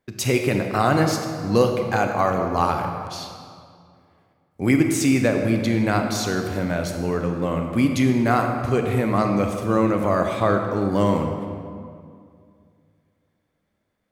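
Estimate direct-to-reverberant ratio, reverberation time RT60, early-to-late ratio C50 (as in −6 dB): 4.0 dB, 2.3 s, 4.5 dB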